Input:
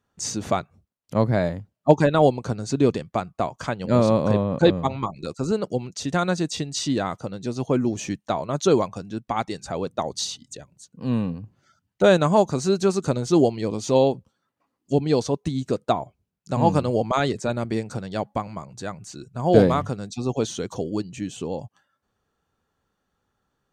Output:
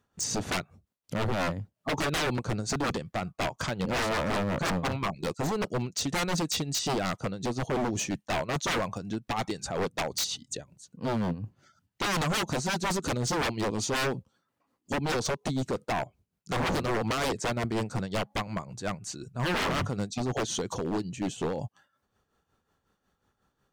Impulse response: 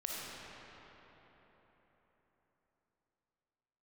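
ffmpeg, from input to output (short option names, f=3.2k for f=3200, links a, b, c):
-af "acontrast=33,tremolo=f=5.5:d=0.62,aeval=exprs='0.0891*(abs(mod(val(0)/0.0891+3,4)-2)-1)':c=same,volume=-2dB"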